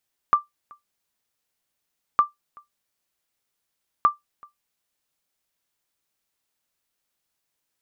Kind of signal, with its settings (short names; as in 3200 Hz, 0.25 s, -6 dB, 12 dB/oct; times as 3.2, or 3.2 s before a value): sonar ping 1180 Hz, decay 0.15 s, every 1.86 s, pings 3, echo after 0.38 s, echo -28.5 dB -8 dBFS